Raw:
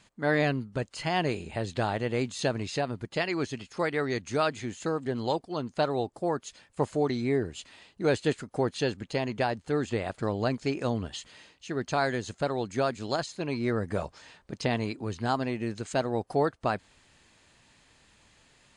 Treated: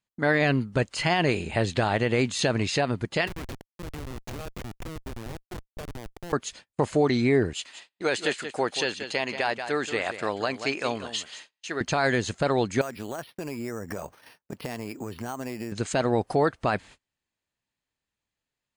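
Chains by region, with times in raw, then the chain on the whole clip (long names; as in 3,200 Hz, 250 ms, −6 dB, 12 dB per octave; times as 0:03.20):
0:03.27–0:06.33: meter weighting curve A + downward compressor 16 to 1, threshold −35 dBFS + comparator with hysteresis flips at −36.5 dBFS
0:07.53–0:11.81: high-pass filter 830 Hz 6 dB per octave + single-tap delay 181 ms −11.5 dB
0:12.81–0:15.72: high-pass filter 150 Hz 6 dB per octave + downward compressor, threshold −37 dBFS + bad sample-rate conversion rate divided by 6×, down filtered, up hold
whole clip: noise gate −51 dBFS, range −34 dB; dynamic equaliser 2,200 Hz, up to +4 dB, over −48 dBFS, Q 1.2; brickwall limiter −19.5 dBFS; level +7 dB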